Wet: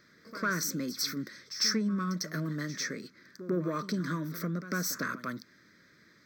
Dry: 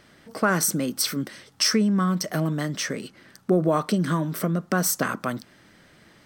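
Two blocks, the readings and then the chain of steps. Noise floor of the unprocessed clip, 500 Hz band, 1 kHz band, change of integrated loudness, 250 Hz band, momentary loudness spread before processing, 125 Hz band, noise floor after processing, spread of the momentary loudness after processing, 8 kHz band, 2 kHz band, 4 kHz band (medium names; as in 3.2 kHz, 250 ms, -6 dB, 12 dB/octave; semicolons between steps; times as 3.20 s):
-55 dBFS, -11.5 dB, -10.0 dB, -8.5 dB, -9.0 dB, 13 LU, -9.5 dB, -62 dBFS, 12 LU, -9.0 dB, -5.5 dB, -5.5 dB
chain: saturation -13.5 dBFS, distortion -18 dB; high-pass 220 Hz 6 dB/octave; static phaser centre 2.9 kHz, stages 6; pre-echo 100 ms -13.5 dB; trim -4 dB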